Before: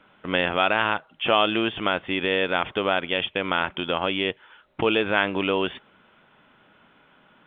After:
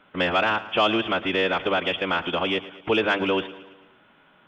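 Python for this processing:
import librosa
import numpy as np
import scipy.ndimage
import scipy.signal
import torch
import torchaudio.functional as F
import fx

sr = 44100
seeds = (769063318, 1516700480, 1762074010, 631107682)

y = fx.hum_notches(x, sr, base_hz=50, count=5)
y = 10.0 ** (-6.5 / 20.0) * np.tanh(y / 10.0 ** (-6.5 / 20.0))
y = fx.stretch_vocoder(y, sr, factor=0.6)
y = fx.echo_feedback(y, sr, ms=111, feedback_pct=55, wet_db=-16.5)
y = y * librosa.db_to_amplitude(1.5)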